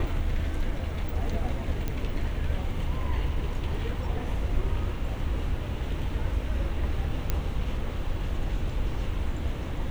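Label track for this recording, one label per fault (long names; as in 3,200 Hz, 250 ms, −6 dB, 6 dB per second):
1.880000	1.880000	click −17 dBFS
7.300000	7.300000	click −12 dBFS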